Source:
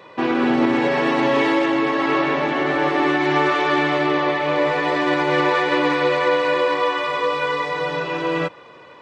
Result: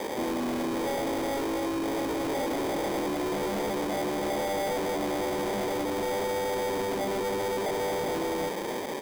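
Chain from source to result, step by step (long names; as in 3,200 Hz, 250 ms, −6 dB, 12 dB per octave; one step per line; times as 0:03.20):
flat-topped bell 2,800 Hz −9.5 dB
far-end echo of a speakerphone 350 ms, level −27 dB
in parallel at −10 dB: fuzz pedal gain 45 dB, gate −50 dBFS
on the sum: decimation without filtering 32×
high-pass filter 250 Hz 12 dB per octave
brickwall limiter −11 dBFS, peak gain reduction 8.5 dB
hard clipping −23 dBFS, distortion −7 dB
level −3.5 dB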